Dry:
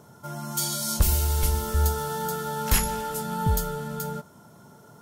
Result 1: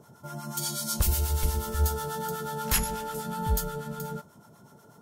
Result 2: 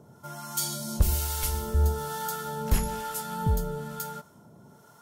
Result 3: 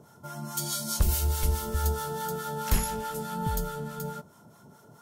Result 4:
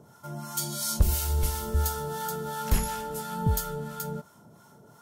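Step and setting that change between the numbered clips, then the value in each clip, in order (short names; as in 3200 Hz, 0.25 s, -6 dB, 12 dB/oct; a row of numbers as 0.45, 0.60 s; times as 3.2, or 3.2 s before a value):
harmonic tremolo, rate: 8.2, 1.1, 4.7, 2.9 Hz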